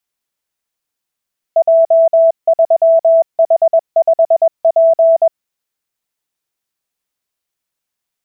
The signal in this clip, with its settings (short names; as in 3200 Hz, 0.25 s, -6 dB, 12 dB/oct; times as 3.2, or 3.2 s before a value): Morse "J3H5P" 21 wpm 658 Hz -5.5 dBFS